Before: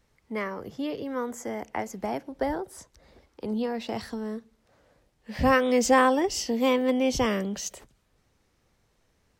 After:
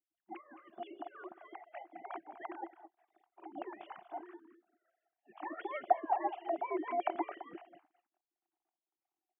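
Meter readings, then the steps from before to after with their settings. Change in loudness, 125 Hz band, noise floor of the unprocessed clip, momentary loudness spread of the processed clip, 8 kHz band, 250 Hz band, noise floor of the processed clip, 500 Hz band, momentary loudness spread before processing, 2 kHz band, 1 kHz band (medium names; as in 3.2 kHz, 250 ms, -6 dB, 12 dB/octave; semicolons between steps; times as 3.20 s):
-13.0 dB, under -35 dB, -70 dBFS, 18 LU, under -40 dB, -19.0 dB, under -85 dBFS, -14.5 dB, 15 LU, -18.5 dB, -8.0 dB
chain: formants replaced by sine waves; rotary cabinet horn 5.5 Hz; on a send: delay 215 ms -13 dB; on the sum: spectral gate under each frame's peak -15 dB weak; two resonant band-passes 490 Hz, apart 1.1 oct; trim +13.5 dB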